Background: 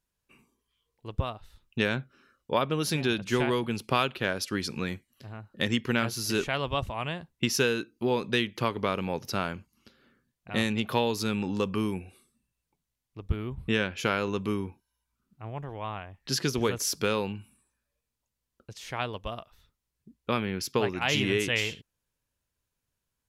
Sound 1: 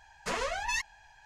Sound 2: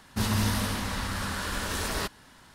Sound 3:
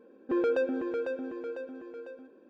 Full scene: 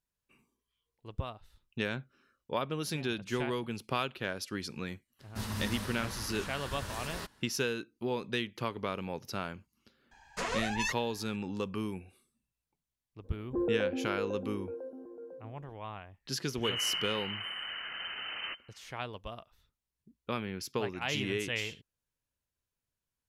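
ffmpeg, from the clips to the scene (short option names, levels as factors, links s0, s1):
-filter_complex "[2:a]asplit=2[s0][s1];[0:a]volume=0.447[s2];[3:a]lowpass=f=1000:w=0.5412,lowpass=f=1000:w=1.3066[s3];[s1]lowpass=f=2600:t=q:w=0.5098,lowpass=f=2600:t=q:w=0.6013,lowpass=f=2600:t=q:w=0.9,lowpass=f=2600:t=q:w=2.563,afreqshift=-3100[s4];[s0]atrim=end=2.54,asetpts=PTS-STARTPTS,volume=0.299,afade=t=in:d=0.004:c=hsin,afade=t=out:st=2.536:d=0.004:c=hsin,adelay=5190[s5];[1:a]atrim=end=1.25,asetpts=PTS-STARTPTS,volume=0.794,afade=t=in:d=0.004:c=hsin,afade=t=out:st=1.246:d=0.004:c=hsin,adelay=10110[s6];[s3]atrim=end=2.49,asetpts=PTS-STARTPTS,volume=0.668,afade=t=in:d=0.004:c=hsin,afade=t=out:st=2.486:d=0.004:c=hsin,adelay=13240[s7];[s4]atrim=end=2.54,asetpts=PTS-STARTPTS,volume=0.398,afade=t=in:d=0.004:c=hsin,afade=t=out:st=2.536:d=0.004:c=hsin,adelay=16470[s8];[s2][s5][s6][s7][s8]amix=inputs=5:normalize=0"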